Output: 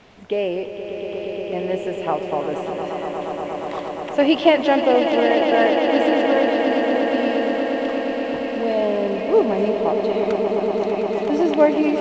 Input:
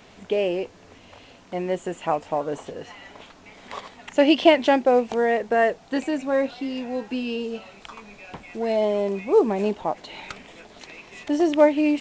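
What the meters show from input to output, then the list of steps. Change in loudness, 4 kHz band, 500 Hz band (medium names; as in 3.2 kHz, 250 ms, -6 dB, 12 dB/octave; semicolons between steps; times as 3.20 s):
+2.5 dB, +3.0 dB, +4.5 dB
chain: distance through air 82 m; echo with a slow build-up 118 ms, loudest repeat 8, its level -10 dB; trim +1 dB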